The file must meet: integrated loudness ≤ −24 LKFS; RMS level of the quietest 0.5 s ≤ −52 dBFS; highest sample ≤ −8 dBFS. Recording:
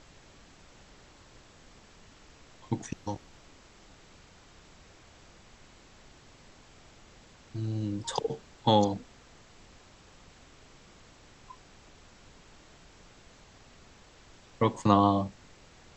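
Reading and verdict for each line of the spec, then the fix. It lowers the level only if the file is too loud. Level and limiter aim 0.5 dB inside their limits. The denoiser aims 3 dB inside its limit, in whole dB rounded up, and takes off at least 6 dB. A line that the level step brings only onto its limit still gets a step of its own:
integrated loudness −29.5 LKFS: in spec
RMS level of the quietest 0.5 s −55 dBFS: in spec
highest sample −9.0 dBFS: in spec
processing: no processing needed

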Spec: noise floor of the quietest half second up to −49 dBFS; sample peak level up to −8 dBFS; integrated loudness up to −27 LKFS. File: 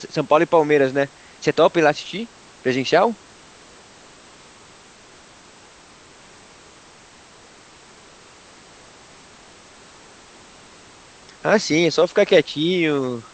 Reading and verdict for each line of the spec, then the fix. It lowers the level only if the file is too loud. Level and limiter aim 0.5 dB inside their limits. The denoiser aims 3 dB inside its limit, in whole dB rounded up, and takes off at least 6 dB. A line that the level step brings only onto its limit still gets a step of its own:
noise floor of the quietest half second −47 dBFS: out of spec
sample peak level −1.5 dBFS: out of spec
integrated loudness −18.5 LKFS: out of spec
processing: level −9 dB

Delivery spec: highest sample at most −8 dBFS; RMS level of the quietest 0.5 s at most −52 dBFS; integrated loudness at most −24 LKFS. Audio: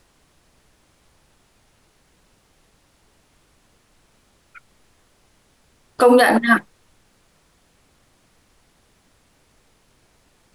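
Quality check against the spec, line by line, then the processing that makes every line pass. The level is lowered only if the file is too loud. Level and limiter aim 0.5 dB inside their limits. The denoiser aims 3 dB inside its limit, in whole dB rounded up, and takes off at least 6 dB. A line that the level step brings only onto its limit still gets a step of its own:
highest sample −4.0 dBFS: out of spec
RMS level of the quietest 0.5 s −60 dBFS: in spec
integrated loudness −15.0 LKFS: out of spec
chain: level −9.5 dB

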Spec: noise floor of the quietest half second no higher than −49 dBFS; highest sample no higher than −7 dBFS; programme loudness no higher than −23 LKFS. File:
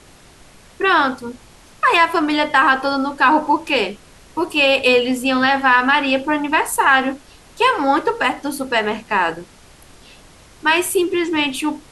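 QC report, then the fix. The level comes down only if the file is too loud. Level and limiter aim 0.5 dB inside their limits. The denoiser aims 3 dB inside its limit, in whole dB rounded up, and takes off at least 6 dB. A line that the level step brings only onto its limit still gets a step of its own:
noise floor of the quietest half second −46 dBFS: out of spec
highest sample −2.0 dBFS: out of spec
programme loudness −16.5 LKFS: out of spec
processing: level −7 dB

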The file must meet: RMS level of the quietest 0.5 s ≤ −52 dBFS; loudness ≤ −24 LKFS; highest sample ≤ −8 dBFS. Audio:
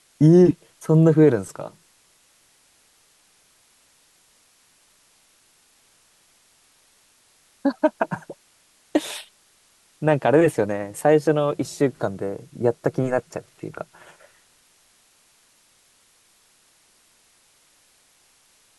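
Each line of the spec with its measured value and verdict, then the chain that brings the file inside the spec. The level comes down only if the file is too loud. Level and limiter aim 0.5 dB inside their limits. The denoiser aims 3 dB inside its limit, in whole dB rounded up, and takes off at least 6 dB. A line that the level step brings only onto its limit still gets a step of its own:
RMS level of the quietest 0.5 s −60 dBFS: in spec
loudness −20.5 LKFS: out of spec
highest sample −5.5 dBFS: out of spec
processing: level −4 dB

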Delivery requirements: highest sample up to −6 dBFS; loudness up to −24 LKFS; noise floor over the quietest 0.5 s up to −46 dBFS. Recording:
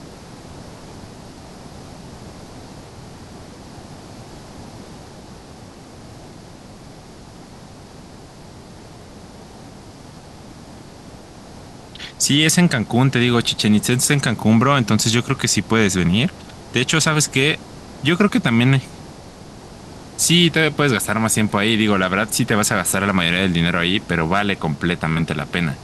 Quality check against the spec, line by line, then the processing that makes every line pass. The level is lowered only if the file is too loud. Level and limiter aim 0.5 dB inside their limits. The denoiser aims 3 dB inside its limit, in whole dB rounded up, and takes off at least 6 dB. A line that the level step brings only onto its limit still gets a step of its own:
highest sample −2.0 dBFS: out of spec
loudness −17.0 LKFS: out of spec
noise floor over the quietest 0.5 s −40 dBFS: out of spec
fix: level −7.5 dB

